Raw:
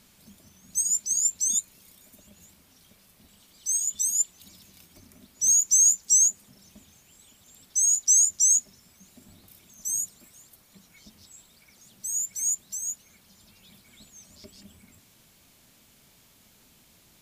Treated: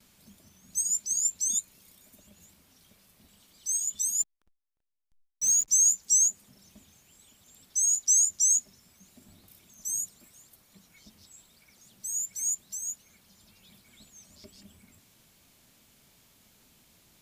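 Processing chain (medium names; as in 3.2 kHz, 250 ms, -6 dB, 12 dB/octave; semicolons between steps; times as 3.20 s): 4.19–5.68 s: hysteresis with a dead band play -33 dBFS; gate with hold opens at -49 dBFS; trim -3 dB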